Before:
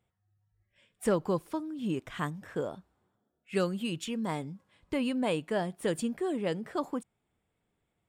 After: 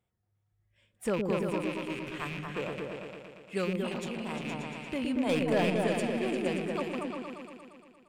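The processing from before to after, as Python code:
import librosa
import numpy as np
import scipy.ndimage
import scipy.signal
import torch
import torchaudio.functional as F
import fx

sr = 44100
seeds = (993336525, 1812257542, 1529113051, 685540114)

y = fx.rattle_buzz(x, sr, strikes_db=-45.0, level_db=-26.0)
y = fx.peak_eq(y, sr, hz=230.0, db=-14.5, octaves=1.2, at=(1.7, 2.26))
y = fx.leveller(y, sr, passes=2, at=(5.29, 5.8))
y = fx.echo_opening(y, sr, ms=116, hz=400, octaves=2, feedback_pct=70, wet_db=0)
y = fx.transformer_sat(y, sr, knee_hz=820.0, at=(3.84, 4.45))
y = y * 10.0 ** (-3.5 / 20.0)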